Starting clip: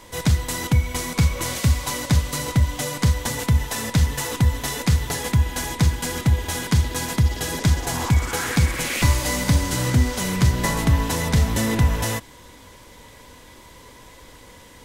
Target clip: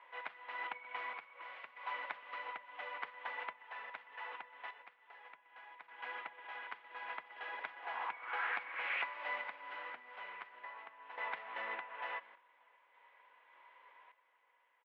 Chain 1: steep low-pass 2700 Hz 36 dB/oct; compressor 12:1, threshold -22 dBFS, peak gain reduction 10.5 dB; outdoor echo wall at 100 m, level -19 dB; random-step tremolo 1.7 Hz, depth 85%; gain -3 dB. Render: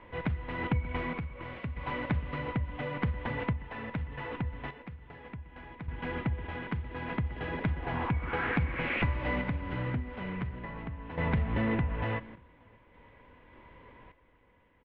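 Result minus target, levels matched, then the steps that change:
500 Hz band +5.0 dB
add after compressor: ladder high-pass 640 Hz, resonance 20%

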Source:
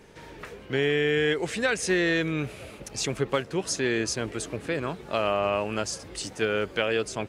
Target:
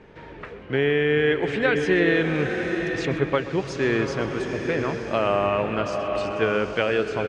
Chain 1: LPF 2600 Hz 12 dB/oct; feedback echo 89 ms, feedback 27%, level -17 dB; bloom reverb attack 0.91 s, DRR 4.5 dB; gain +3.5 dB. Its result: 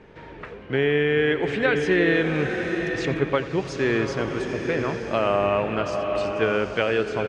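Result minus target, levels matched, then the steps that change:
echo 39 ms early
change: feedback echo 0.128 s, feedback 27%, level -17 dB

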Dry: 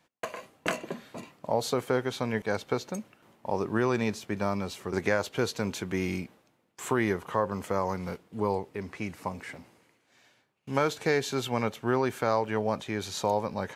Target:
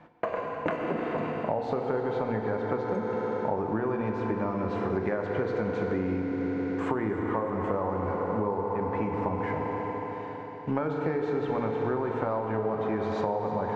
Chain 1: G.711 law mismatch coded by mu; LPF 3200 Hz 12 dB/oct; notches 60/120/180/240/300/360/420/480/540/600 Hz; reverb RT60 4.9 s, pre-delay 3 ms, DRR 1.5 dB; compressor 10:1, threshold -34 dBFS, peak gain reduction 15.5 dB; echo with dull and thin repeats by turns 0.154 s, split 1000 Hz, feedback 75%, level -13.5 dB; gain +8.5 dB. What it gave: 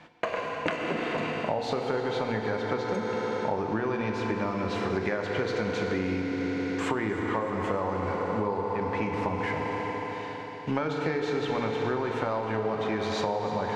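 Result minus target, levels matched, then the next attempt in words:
4000 Hz band +12.5 dB
G.711 law mismatch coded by mu; LPF 1300 Hz 12 dB/oct; notches 60/120/180/240/300/360/420/480/540/600 Hz; reverb RT60 4.9 s, pre-delay 3 ms, DRR 1.5 dB; compressor 10:1, threshold -34 dBFS, peak gain reduction 15 dB; echo with dull and thin repeats by turns 0.154 s, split 1000 Hz, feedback 75%, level -13.5 dB; gain +8.5 dB

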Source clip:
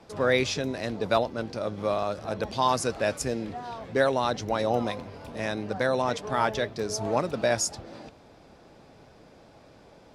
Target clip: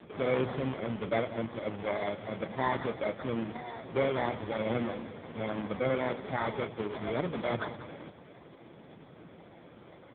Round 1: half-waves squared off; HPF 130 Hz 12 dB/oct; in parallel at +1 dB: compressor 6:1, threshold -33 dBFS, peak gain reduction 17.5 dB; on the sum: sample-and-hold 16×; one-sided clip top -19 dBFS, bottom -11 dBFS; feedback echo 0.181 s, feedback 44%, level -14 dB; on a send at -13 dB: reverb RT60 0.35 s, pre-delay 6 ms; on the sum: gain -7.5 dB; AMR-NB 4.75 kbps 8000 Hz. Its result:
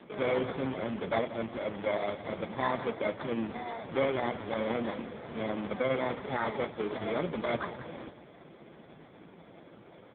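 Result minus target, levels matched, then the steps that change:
compressor: peak gain reduction -8 dB; 125 Hz band -3.5 dB
change: HPF 61 Hz 12 dB/oct; change: compressor 6:1, threshold -43 dBFS, peak gain reduction 25.5 dB

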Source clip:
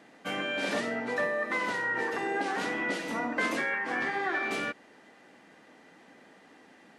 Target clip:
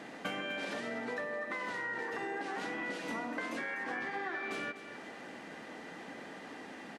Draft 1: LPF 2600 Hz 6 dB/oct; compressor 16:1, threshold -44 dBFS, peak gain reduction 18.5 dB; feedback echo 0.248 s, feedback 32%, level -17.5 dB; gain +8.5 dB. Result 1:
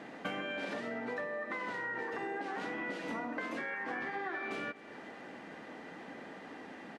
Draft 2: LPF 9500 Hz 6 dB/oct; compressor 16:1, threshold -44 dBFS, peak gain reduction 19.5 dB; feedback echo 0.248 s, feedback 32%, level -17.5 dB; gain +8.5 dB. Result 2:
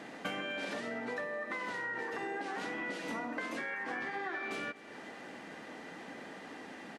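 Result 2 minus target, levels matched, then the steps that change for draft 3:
echo-to-direct -6.5 dB
change: feedback echo 0.248 s, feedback 32%, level -11 dB

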